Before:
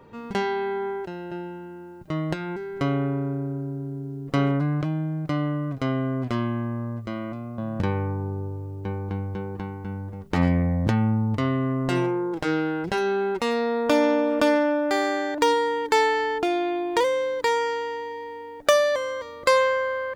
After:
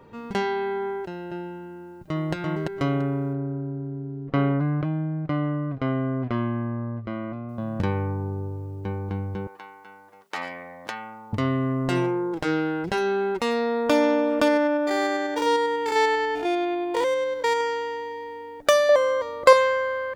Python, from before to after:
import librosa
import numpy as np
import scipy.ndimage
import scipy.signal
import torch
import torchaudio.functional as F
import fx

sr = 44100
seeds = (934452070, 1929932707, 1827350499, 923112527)

y = fx.echo_throw(x, sr, start_s=1.81, length_s=0.52, ms=340, feedback_pct=20, wet_db=-2.0)
y = fx.lowpass(y, sr, hz=2500.0, slope=12, at=(3.33, 7.49))
y = fx.highpass(y, sr, hz=850.0, slope=12, at=(9.47, 11.33))
y = fx.spec_steps(y, sr, hold_ms=100, at=(14.48, 17.61))
y = fx.peak_eq(y, sr, hz=710.0, db=9.5, octaves=1.6, at=(18.89, 19.53))